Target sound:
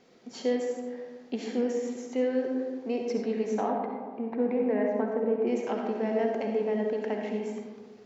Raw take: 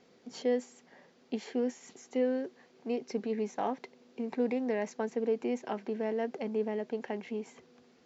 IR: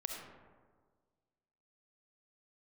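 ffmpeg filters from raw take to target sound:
-filter_complex "[0:a]asettb=1/sr,asplit=3[a][b][c];[a]atrim=end=3.614[d];[b]atrim=start=3.61:end=5.47,asetpts=PTS-STARTPTS,afade=t=in:d=0.004:c=qsin,afade=t=out:st=1.856:d=0.004:c=qsin,lowpass=1.7k[e];[c]atrim=start=5.466[f];[d][e]acrossfade=d=0.004:c1=hsin:c2=qsin[g];[g][f]acrossfade=d=0.004:c1=qsin:c2=hsin[h];[1:a]atrim=start_sample=2205[i];[h][i]afir=irnorm=-1:irlink=0,volume=4.5dB"

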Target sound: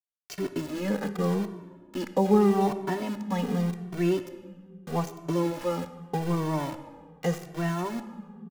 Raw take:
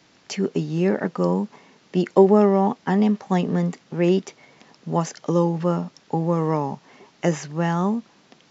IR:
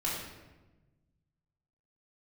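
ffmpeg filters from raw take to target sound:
-filter_complex "[0:a]aeval=exprs='val(0)*gte(abs(val(0)),0.0447)':c=same,asplit=2[a][b];[1:a]atrim=start_sample=2205,asetrate=29106,aresample=44100[c];[b][c]afir=irnorm=-1:irlink=0,volume=-17dB[d];[a][d]amix=inputs=2:normalize=0,asplit=2[e][f];[f]adelay=2.1,afreqshift=-0.82[g];[e][g]amix=inputs=2:normalize=1,volume=-5dB"

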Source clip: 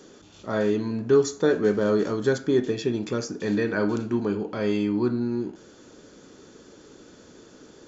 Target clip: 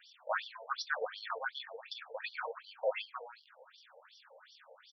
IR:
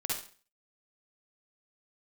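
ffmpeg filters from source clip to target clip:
-af "atempo=1.6,afftfilt=real='re*between(b*sr/1024,630*pow(4200/630,0.5+0.5*sin(2*PI*2.7*pts/sr))/1.41,630*pow(4200/630,0.5+0.5*sin(2*PI*2.7*pts/sr))*1.41)':imag='im*between(b*sr/1024,630*pow(4200/630,0.5+0.5*sin(2*PI*2.7*pts/sr))/1.41,630*pow(4200/630,0.5+0.5*sin(2*PI*2.7*pts/sr))*1.41)':win_size=1024:overlap=0.75,volume=3dB"

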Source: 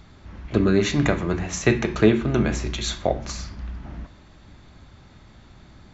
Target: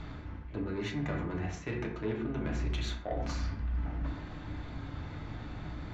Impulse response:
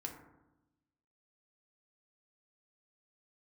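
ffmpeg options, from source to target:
-filter_complex "[0:a]lowpass=2.6k,aemphasis=mode=production:type=50kf,areverse,acompressor=threshold=-41dB:ratio=4,areverse,asoftclip=type=tanh:threshold=-32.5dB[a];[1:a]atrim=start_sample=2205,afade=t=out:st=0.18:d=0.01,atrim=end_sample=8379[b];[a][b]afir=irnorm=-1:irlink=0,volume=8.5dB"

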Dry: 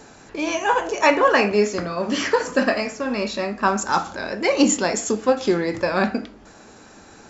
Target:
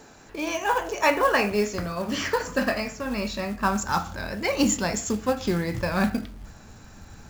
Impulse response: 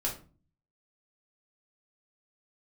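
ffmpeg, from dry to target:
-af "asubboost=boost=9:cutoff=120,acrusher=bits=5:mode=log:mix=0:aa=0.000001,volume=-4dB"

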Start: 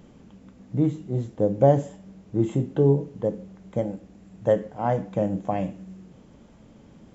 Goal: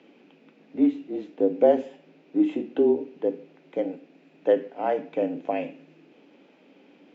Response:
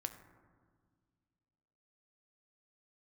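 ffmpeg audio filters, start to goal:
-af "afreqshift=-31,highpass=f=280:w=0.5412,highpass=f=280:w=1.3066,equalizer=f=290:t=q:w=4:g=7,equalizer=f=1.1k:t=q:w=4:g=-6,equalizer=f=2.5k:t=q:w=4:g=10,lowpass=f=4.6k:w=0.5412,lowpass=f=4.6k:w=1.3066"

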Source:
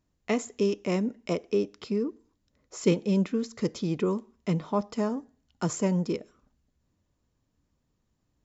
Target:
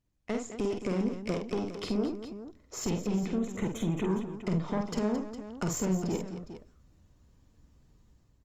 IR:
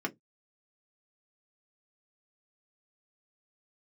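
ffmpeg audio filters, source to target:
-filter_complex "[0:a]lowshelf=f=110:g=9,dynaudnorm=f=200:g=5:m=15dB,alimiter=limit=-8.5dB:level=0:latency=1:release=11,acompressor=threshold=-20dB:ratio=5,aeval=exprs='(tanh(10*val(0)+0.65)-tanh(0.65))/10':c=same,asettb=1/sr,asplit=3[a][b][c];[a]atrim=end=3.334[d];[b]atrim=start=3.33:end=4.1,asetpts=PTS-STARTPTS,afade=t=in:d=0.004:c=qsin,afade=t=out:st=0.766:d=0.004:c=qsin,asuperstop=centerf=4800:order=4:qfactor=1.6[e];[c]atrim=start=4.096[f];[d][e]acrossfade=d=0.004:c1=hsin:c2=qsin[g];[g][f]acrossfade=d=0.004:c1=qsin:c2=hsin,aecho=1:1:48|219|409:0.596|0.282|0.251,volume=-5dB" -ar 48000 -c:a libopus -b:a 32k

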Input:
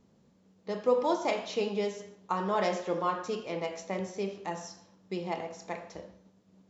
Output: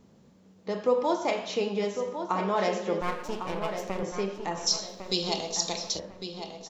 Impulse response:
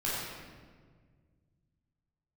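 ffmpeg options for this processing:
-filter_complex "[0:a]asettb=1/sr,asplit=3[a][b][c];[a]atrim=end=3.014[d];[b]atrim=start=3.01:end=4.03,asetpts=PTS-STARTPTS,afade=t=in:d=0.004:c=qsin,afade=t=out:st=1.016:d=0.004:c=qsin,aeval=exprs='max(val(0),0)':c=same[e];[c]atrim=start=4.026[f];[d][e]acrossfade=d=0.004:c1=hsin:c2=qsin[g];[g][f]acrossfade=d=0.004:c1=qsin:c2=hsin,asplit=2[h][i];[i]acompressor=threshold=-40dB:ratio=6,volume=1dB[j];[h][j]amix=inputs=2:normalize=0,asplit=3[k][l][m];[k]afade=t=out:st=4.66:d=0.02[n];[l]highshelf=f=2.7k:t=q:w=3:g=14,afade=t=in:st=4.66:d=0.02,afade=t=out:st=5.98:d=0.02[o];[m]afade=t=in:st=5.98:d=0.02[p];[n][o][p]amix=inputs=3:normalize=0,asplit=2[q][r];[r]adelay=1103,lowpass=f=3.4k:p=1,volume=-8dB,asplit=2[s][t];[t]adelay=1103,lowpass=f=3.4k:p=1,volume=0.33,asplit=2[u][v];[v]adelay=1103,lowpass=f=3.4k:p=1,volume=0.33,asplit=2[w][x];[x]adelay=1103,lowpass=f=3.4k:p=1,volume=0.33[y];[q][s][u][w][y]amix=inputs=5:normalize=0"

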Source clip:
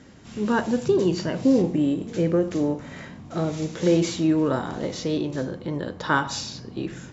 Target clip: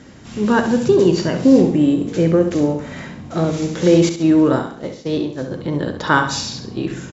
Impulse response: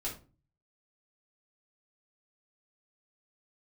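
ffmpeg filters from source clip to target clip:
-filter_complex "[0:a]asettb=1/sr,asplit=3[a][b][c];[a]atrim=end=4.094[d];[b]atrim=start=4.09:end=5.51,asetpts=PTS-STARTPTS,afade=t=in:d=0.004:c=qsin,afade=t=out:st=1.416:d=0.004:c=qsin,agate=range=-33dB:threshold=-21dB:ratio=3:detection=peak[e];[c]atrim=start=5.506[f];[d][e]acrossfade=d=0.004:c1=hsin:c2=qsin[g];[g][f]acrossfade=d=0.004:c1=qsin:c2=hsin,aecho=1:1:67|134|201|268:0.355|0.131|0.0486|0.018,volume=6.5dB"

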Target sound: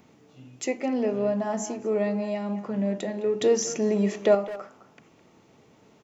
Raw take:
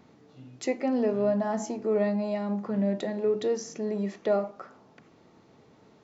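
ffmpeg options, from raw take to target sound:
-filter_complex "[0:a]aexciter=amount=1.1:drive=7.6:freq=2.3k,asettb=1/sr,asplit=3[a][b][c];[a]atrim=end=3.414[d];[b]atrim=start=3.41:end=4.35,asetpts=PTS-STARTPTS,afade=t=in:d=0.004:c=qsin,afade=t=out:st=0.936:d=0.004:c=qsin,acontrast=65[e];[c]atrim=start=4.346[f];[d][e]acrossfade=d=0.004:c1=hsin:c2=qsin[g];[g][f]acrossfade=d=0.004:c1=qsin:c2=hsin,asplit=2[h][i];[i]adelay=210,highpass=300,lowpass=3.4k,asoftclip=type=hard:threshold=-18dB,volume=-13dB[j];[h][j]amix=inputs=2:normalize=0"

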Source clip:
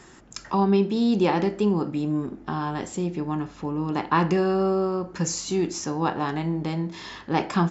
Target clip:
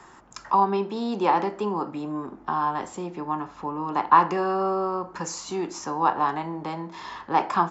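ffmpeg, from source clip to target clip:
-filter_complex "[0:a]equalizer=f=1k:t=o:w=1.2:g=13.5,acrossover=split=210|360|2800[a][b][c][d];[a]acompressor=threshold=-39dB:ratio=6[e];[e][b][c][d]amix=inputs=4:normalize=0,volume=-5.5dB"

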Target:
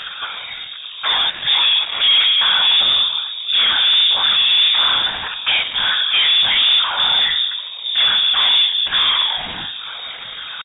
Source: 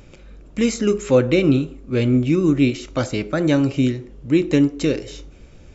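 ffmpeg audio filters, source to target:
-filter_complex "[0:a]afftfilt=real='re*pow(10,7/40*sin(2*PI*(0.98*log(max(b,1)*sr/1024/100)/log(2)-(2.5)*(pts-256)/sr)))':imag='im*pow(10,7/40*sin(2*PI*(0.98*log(max(b,1)*sr/1024/100)/log(2)-(2.5)*(pts-256)/sr)))':win_size=1024:overlap=0.75,highshelf=f=2.4k:g=10.5,bandreject=f=60:t=h:w=6,bandreject=f=120:t=h:w=6,bandreject=f=180:t=h:w=6,bandreject=f=240:t=h:w=6,areverse,acompressor=mode=upward:threshold=-38dB:ratio=2.5,areverse,atempo=0.54,afftfilt=real='hypot(re,im)*cos(2*PI*random(0))':imag='hypot(re,im)*sin(2*PI*random(1))':win_size=512:overlap=0.75,asplit=2[a][b];[b]highpass=f=720:p=1,volume=40dB,asoftclip=type=tanh:threshold=-4.5dB[c];[a][c]amix=inputs=2:normalize=0,lowpass=f=1.5k:p=1,volume=-6dB,asplit=2[d][e];[e]adelay=380,lowpass=f=1.3k:p=1,volume=-23.5dB,asplit=2[f][g];[g]adelay=380,lowpass=f=1.3k:p=1,volume=0.51,asplit=2[h][i];[i]adelay=380,lowpass=f=1.3k:p=1,volume=0.51[j];[f][h][j]amix=inputs=3:normalize=0[k];[d][k]amix=inputs=2:normalize=0,lowpass=f=3.2k:t=q:w=0.5098,lowpass=f=3.2k:t=q:w=0.6013,lowpass=f=3.2k:t=q:w=0.9,lowpass=f=3.2k:t=q:w=2.563,afreqshift=-3800,volume=-2dB"

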